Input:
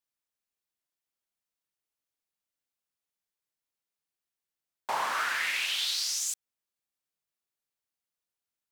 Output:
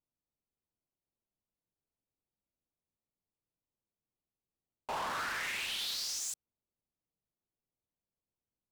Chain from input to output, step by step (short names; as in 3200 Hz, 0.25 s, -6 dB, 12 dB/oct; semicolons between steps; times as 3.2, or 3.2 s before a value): Wiener smoothing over 25 samples; low shelf 360 Hz +10.5 dB; soft clip -33.5 dBFS, distortion -8 dB